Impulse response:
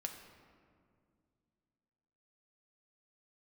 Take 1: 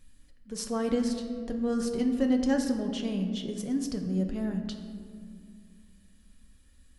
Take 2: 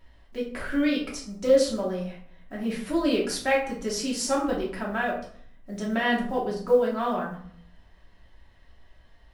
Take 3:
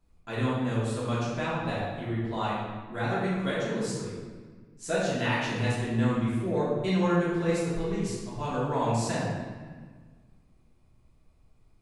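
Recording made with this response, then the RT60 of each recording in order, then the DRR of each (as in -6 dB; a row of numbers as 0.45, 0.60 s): 1; 2.2, 0.55, 1.6 s; 3.5, -4.5, -9.0 dB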